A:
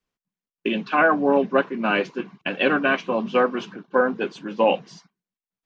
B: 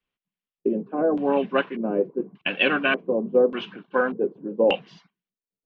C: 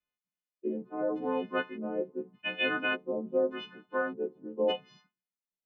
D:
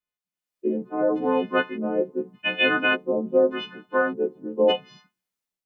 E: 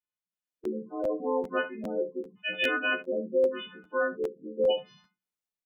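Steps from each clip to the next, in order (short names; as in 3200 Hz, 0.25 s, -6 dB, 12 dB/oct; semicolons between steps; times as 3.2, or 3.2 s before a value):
LFO low-pass square 0.85 Hz 460–3000 Hz; gain -3.5 dB
frequency quantiser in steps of 3 st; LPF 1800 Hz 6 dB/oct; gain -9 dB
AGC gain up to 11 dB; gain -2 dB
spectral gate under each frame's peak -15 dB strong; early reflections 25 ms -11.5 dB, 59 ms -16.5 dB, 69 ms -13 dB; crackling interface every 0.40 s, samples 512, repeat, from 0.63; gain -7.5 dB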